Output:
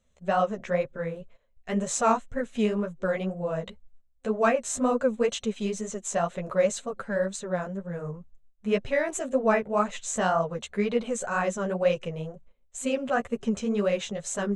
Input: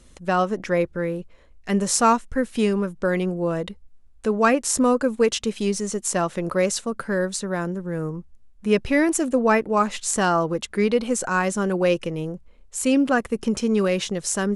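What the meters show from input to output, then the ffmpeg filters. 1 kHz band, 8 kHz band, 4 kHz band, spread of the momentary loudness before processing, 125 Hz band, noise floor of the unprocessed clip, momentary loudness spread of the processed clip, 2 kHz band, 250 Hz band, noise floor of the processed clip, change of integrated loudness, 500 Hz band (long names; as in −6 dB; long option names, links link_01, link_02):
−5.0 dB, −7.5 dB, −8.0 dB, 10 LU, −6.0 dB, −50 dBFS, 11 LU, −6.0 dB, −7.5 dB, −64 dBFS, −5.5 dB, −4.0 dB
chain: -af "superequalizer=6b=0.251:8b=1.78:14b=0.398:16b=0.251,flanger=delay=6.1:depth=8.6:regen=-3:speed=2:shape=triangular,agate=range=-12dB:threshold=-46dB:ratio=16:detection=peak,volume=-3dB"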